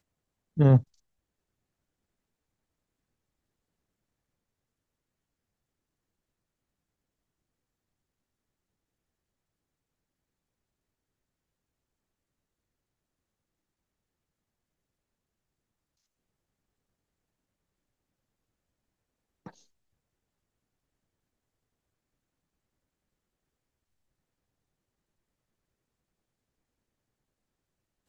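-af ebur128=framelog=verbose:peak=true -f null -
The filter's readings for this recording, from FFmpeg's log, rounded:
Integrated loudness:
  I:         -22.5 LUFS
  Threshold: -36.6 LUFS
Loudness range:
  LRA:         2.9 LU
  Threshold: -57.4 LUFS
  LRA low:   -33.2 LUFS
  LRA high:  -30.3 LUFS
True peak:
  Peak:       -9.1 dBFS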